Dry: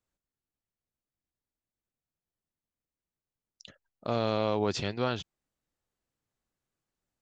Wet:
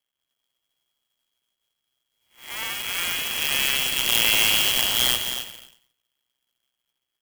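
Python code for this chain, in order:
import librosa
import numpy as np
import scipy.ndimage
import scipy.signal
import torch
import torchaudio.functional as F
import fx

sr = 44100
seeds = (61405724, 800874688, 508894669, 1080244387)

p1 = fx.spec_blur(x, sr, span_ms=393.0)
p2 = fx.doubler(p1, sr, ms=15.0, db=-2.5)
p3 = fx.echo_pitch(p2, sr, ms=154, semitones=4, count=3, db_per_echo=-3.0)
p4 = fx.peak_eq(p3, sr, hz=120.0, db=10.0, octaves=0.66)
p5 = np.maximum(p4, 0.0)
p6 = fx.freq_invert(p5, sr, carrier_hz=3300)
p7 = p6 + fx.echo_single(p6, sr, ms=264, db=-9.5, dry=0)
p8 = fx.clock_jitter(p7, sr, seeds[0], jitter_ms=0.041)
y = p8 * 10.0 ** (8.0 / 20.0)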